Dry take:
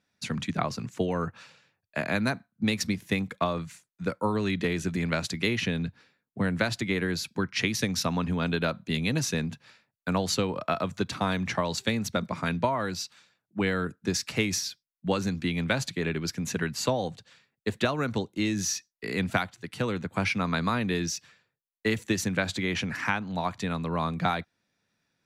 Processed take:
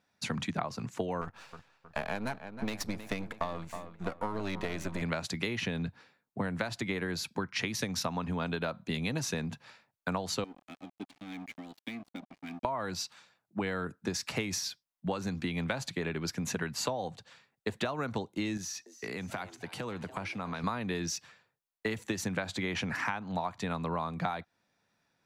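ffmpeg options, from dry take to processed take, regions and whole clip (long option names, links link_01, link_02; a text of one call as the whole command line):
ffmpeg -i in.wav -filter_complex "[0:a]asettb=1/sr,asplit=3[link_01][link_02][link_03];[link_01]atrim=end=1.214[link_04];[link_02]atrim=start=1.21:end=5.02,asetpts=PTS-STARTPTS,afade=type=in:duration=0.004:curve=qsin,afade=type=out:start_time=3.806:duration=0.004:curve=qsin,aeval=exprs='if(lt(val(0),0),0.251*val(0),val(0))':channel_layout=same,asplit=2[link_05][link_06];[link_06]adelay=316,lowpass=frequency=3400:poles=1,volume=-15.5dB,asplit=2[link_07][link_08];[link_08]adelay=316,lowpass=frequency=3400:poles=1,volume=0.49,asplit=2[link_09][link_10];[link_10]adelay=316,lowpass=frequency=3400:poles=1,volume=0.49,asplit=2[link_11][link_12];[link_12]adelay=316,lowpass=frequency=3400:poles=1,volume=0.49[link_13];[link_05][link_07][link_09][link_11][link_13]amix=inputs=5:normalize=0,atrim=end_sample=168021[link_14];[link_03]atrim=start=5.016[link_15];[link_04][link_14]acrossfade=duration=0.004:curve1=hsin:curve2=qsin[link_16];[link_16][link_15]acrossfade=duration=0.004:curve1=qsin:curve2=hsin,asettb=1/sr,asplit=3[link_17][link_18][link_19];[link_17]atrim=end=10.444[link_20];[link_18]atrim=start=10.44:end=12.65,asetpts=PTS-STARTPTS,afade=type=in:duration=0.004:curve=qsin,afade=type=out:start_time=2.206:duration=0.004:curve=qsin,asplit=3[link_21][link_22][link_23];[link_21]bandpass=frequency=270:width_type=q:width=8,volume=0dB[link_24];[link_22]bandpass=frequency=2290:width_type=q:width=8,volume=-6dB[link_25];[link_23]bandpass=frequency=3010:width_type=q:width=8,volume=-9dB[link_26];[link_24][link_25][link_26]amix=inputs=3:normalize=0,aeval=exprs='sgn(val(0))*max(abs(val(0))-0.00398,0)':channel_layout=same[link_27];[link_19]atrim=start=12.646[link_28];[link_20][link_27]acrossfade=duration=0.004:curve1=hsin:curve2=qsin[link_29];[link_29][link_28]acrossfade=duration=0.004:curve1=qsin:curve2=hsin,asettb=1/sr,asplit=3[link_30][link_31][link_32];[link_30]atrim=end=18.574[link_33];[link_31]atrim=start=18.57:end=20.64,asetpts=PTS-STARTPTS,afade=type=in:duration=0.004:curve=qsin,afade=type=out:start_time=2.066:duration=0.004:curve=qsin,highpass=46,acompressor=threshold=-34dB:ratio=10:attack=3.2:release=140:knee=1:detection=peak,asplit=5[link_34][link_35][link_36][link_37][link_38];[link_35]adelay=289,afreqshift=150,volume=-17dB[link_39];[link_36]adelay=578,afreqshift=300,volume=-23.4dB[link_40];[link_37]adelay=867,afreqshift=450,volume=-29.8dB[link_41];[link_38]adelay=1156,afreqshift=600,volume=-36.1dB[link_42];[link_34][link_39][link_40][link_41][link_42]amix=inputs=5:normalize=0,atrim=end_sample=91287[link_43];[link_32]atrim=start=20.636[link_44];[link_33][link_43]acrossfade=duration=0.004:curve1=hsin:curve2=qsin[link_45];[link_45][link_44]acrossfade=duration=0.004:curve1=qsin:curve2=hsin,equalizer=frequency=840:width=1.1:gain=7,acompressor=threshold=-29dB:ratio=6,volume=-1dB" out.wav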